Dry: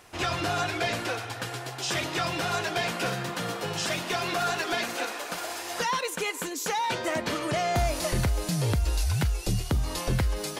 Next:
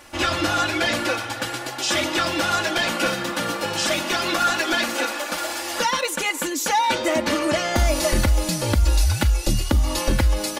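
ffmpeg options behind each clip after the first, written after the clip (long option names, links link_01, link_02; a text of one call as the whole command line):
ffmpeg -i in.wav -af "aecho=1:1:3.5:0.76,volume=5.5dB" out.wav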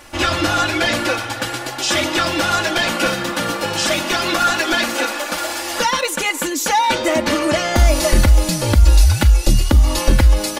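ffmpeg -i in.wav -af "lowshelf=frequency=65:gain=6.5,volume=4dB" out.wav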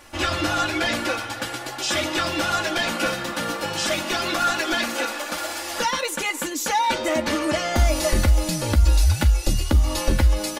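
ffmpeg -i in.wav -filter_complex "[0:a]asplit=2[link_01][link_02];[link_02]adelay=13,volume=-11dB[link_03];[link_01][link_03]amix=inputs=2:normalize=0,volume=-6dB" out.wav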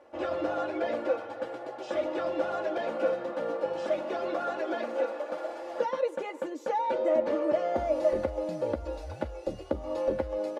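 ffmpeg -i in.wav -af "bandpass=frequency=520:width_type=q:width=2.9:csg=0,volume=2.5dB" out.wav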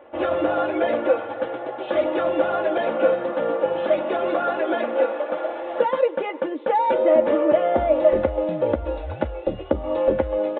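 ffmpeg -i in.wav -af "aresample=8000,aresample=44100,volume=9dB" out.wav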